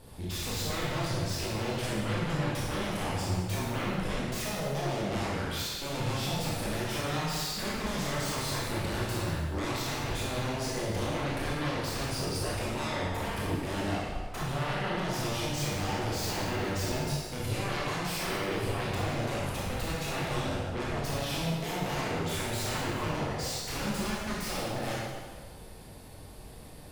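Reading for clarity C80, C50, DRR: 0.5 dB, -2.0 dB, -6.0 dB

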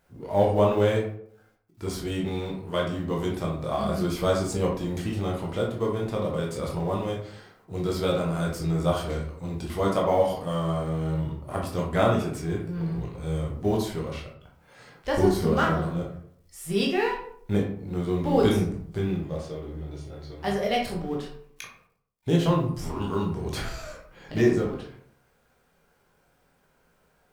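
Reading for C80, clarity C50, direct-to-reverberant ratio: 9.0 dB, 5.0 dB, -2.0 dB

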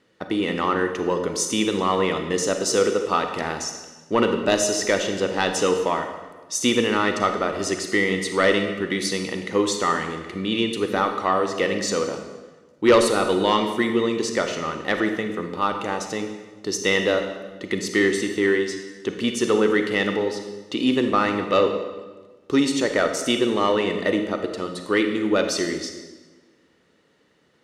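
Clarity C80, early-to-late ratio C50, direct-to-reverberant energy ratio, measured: 8.5 dB, 6.5 dB, 5.5 dB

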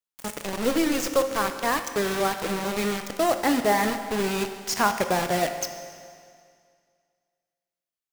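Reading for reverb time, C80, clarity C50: 2.1 s, 10.0 dB, 8.5 dB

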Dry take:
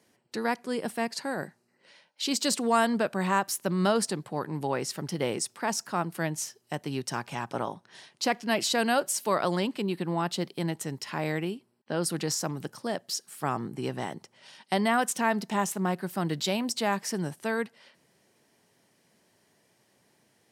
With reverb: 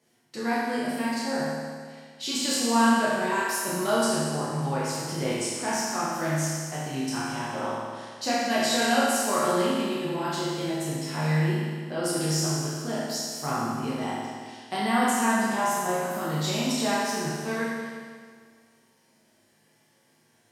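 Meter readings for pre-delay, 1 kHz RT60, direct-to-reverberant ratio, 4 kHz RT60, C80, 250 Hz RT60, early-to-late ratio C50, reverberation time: 8 ms, 1.8 s, -9.0 dB, 1.8 s, 0.0 dB, 1.8 s, -2.5 dB, 1.8 s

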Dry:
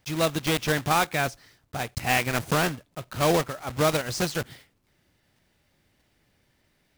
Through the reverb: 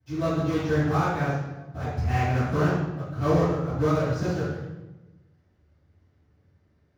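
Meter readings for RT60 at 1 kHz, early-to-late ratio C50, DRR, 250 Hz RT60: 1.0 s, -2.0 dB, -18.0 dB, 1.4 s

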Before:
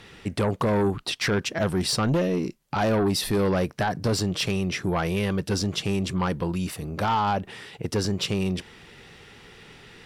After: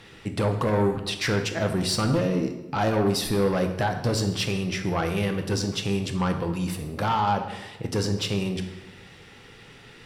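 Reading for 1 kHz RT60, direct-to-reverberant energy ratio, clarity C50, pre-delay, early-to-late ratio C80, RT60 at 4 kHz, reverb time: 1.0 s, 5.0 dB, 8.5 dB, 3 ms, 10.5 dB, 0.80 s, 1.0 s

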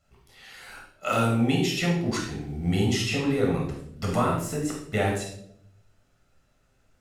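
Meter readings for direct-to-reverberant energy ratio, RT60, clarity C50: -1.5 dB, 0.70 s, 4.0 dB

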